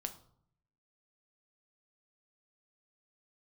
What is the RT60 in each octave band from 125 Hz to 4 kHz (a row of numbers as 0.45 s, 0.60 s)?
0.95 s, 0.85 s, 0.65 s, 0.65 s, 0.40 s, 0.40 s